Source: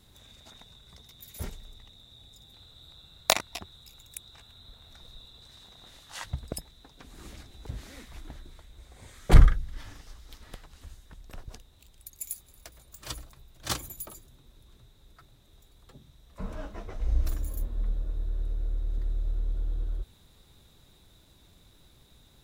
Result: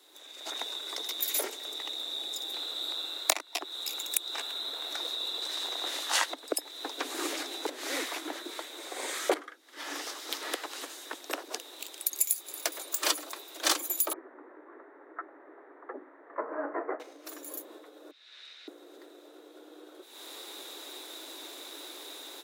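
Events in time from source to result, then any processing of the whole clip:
14.13–17 Chebyshev low-pass 1900 Hz, order 5
18.11–18.68 Chebyshev band-pass 2100–4800 Hz
whole clip: compressor 8:1, threshold -42 dBFS; steep high-pass 290 Hz 72 dB/oct; AGC gain up to 16 dB; gain +2.5 dB

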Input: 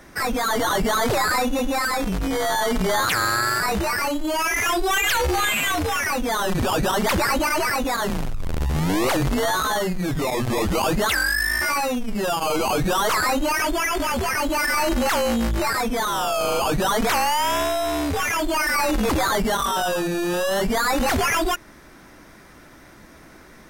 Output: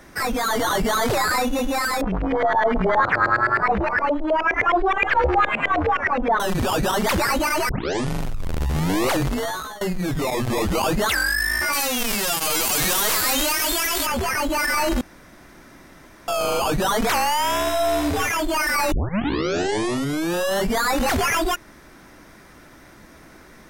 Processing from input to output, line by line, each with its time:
2.01–6.4 LFO low-pass saw up 9.6 Hz 500–2400 Hz
7.69 tape start 0.53 s
9.18–9.81 fade out linear, to -19.5 dB
11.72–14.05 spectral whitening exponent 0.3
15.01–16.28 room tone
17.61–18.27 flutter echo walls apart 10.4 m, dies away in 0.53 s
18.92 tape start 1.41 s

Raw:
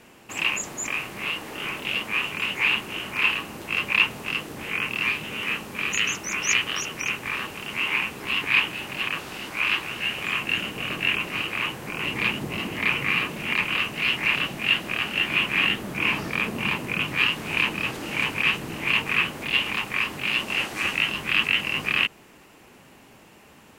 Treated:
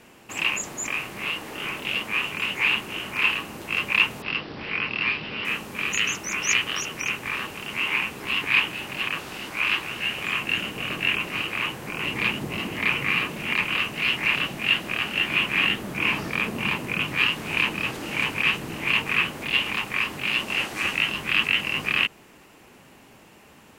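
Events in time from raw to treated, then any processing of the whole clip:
4.22–5.45 careless resampling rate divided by 4×, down none, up filtered

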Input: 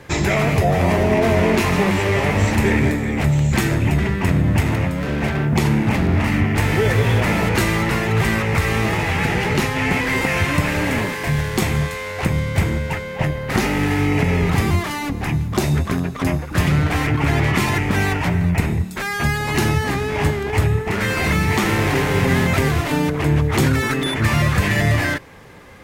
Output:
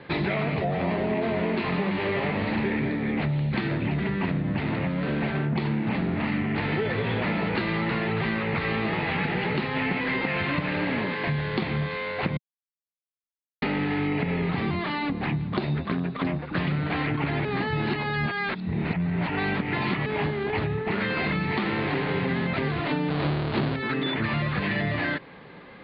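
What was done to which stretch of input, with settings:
12.37–13.62 mute
17.45–20.06 reverse
23.1–23.76 half-waves squared off
whole clip: steep low-pass 4500 Hz 96 dB/oct; resonant low shelf 120 Hz -9.5 dB, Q 1.5; compressor, threshold -20 dBFS; gain -3 dB

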